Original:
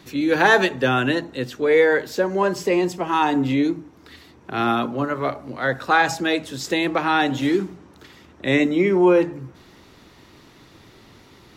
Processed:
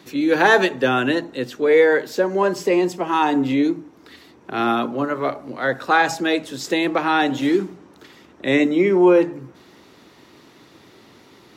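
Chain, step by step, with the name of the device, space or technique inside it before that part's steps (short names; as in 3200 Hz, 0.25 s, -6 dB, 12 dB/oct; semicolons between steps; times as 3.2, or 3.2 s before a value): filter by subtraction (in parallel: LPF 310 Hz 12 dB/oct + phase invert)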